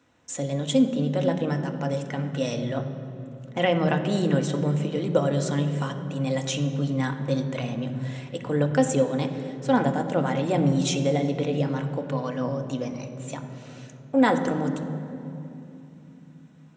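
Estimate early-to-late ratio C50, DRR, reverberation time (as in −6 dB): 8.5 dB, 5.0 dB, 3.0 s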